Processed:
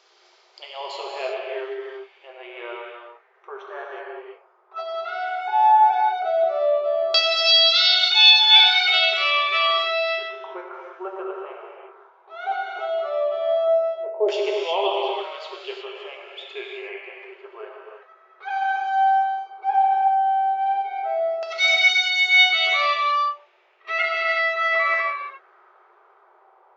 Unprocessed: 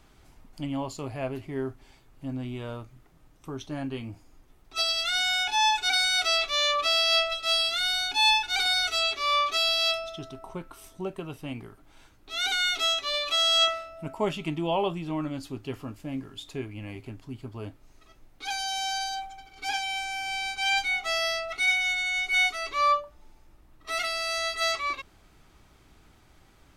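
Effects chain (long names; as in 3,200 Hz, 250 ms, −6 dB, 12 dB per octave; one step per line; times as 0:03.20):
auto-filter low-pass saw down 0.14 Hz 510–5,200 Hz
brick-wall band-pass 350–7,600 Hz
reverb whose tail is shaped and stops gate 390 ms flat, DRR −1.5 dB
level +1.5 dB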